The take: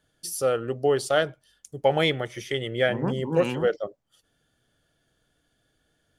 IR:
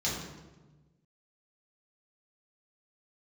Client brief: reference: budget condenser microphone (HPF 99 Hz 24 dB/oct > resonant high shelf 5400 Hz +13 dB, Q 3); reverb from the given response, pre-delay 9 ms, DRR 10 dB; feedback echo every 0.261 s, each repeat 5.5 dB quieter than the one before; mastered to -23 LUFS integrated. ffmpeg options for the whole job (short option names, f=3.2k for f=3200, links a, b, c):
-filter_complex "[0:a]aecho=1:1:261|522|783|1044|1305|1566|1827:0.531|0.281|0.149|0.079|0.0419|0.0222|0.0118,asplit=2[a][b];[1:a]atrim=start_sample=2205,adelay=9[c];[b][c]afir=irnorm=-1:irlink=0,volume=-17dB[d];[a][d]amix=inputs=2:normalize=0,highpass=f=99:w=0.5412,highpass=f=99:w=1.3066,highshelf=f=5.4k:t=q:w=3:g=13,volume=-1.5dB"